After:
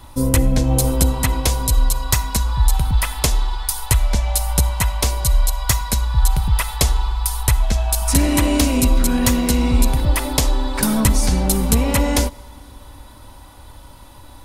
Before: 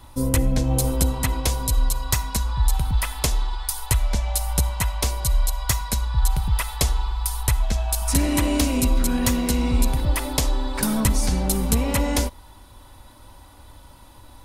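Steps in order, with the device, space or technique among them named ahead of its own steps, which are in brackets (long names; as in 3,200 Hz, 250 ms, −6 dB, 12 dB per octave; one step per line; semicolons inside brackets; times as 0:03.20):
compressed reverb return (on a send at −11.5 dB: convolution reverb RT60 1.7 s, pre-delay 19 ms + downward compressor, threshold −32 dBFS, peak gain reduction 17.5 dB)
on the sum: level +4.5 dB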